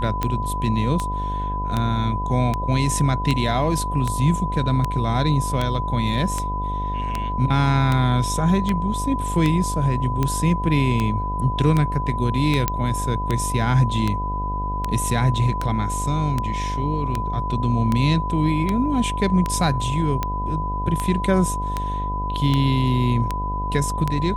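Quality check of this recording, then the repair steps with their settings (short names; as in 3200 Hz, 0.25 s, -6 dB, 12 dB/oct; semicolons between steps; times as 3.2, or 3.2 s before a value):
buzz 50 Hz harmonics 21 -27 dBFS
tick 78 rpm -9 dBFS
tone 1000 Hz -26 dBFS
12.68 pop -4 dBFS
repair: de-click; de-hum 50 Hz, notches 21; notch 1000 Hz, Q 30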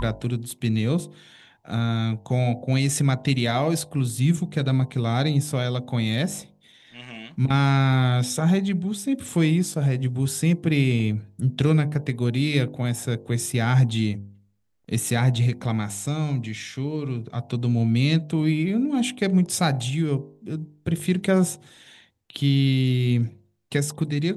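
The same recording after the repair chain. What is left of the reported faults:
none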